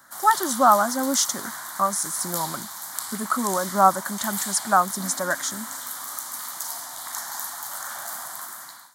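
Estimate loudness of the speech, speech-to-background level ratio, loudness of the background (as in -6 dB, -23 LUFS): -22.5 LUFS, 8.5 dB, -31.0 LUFS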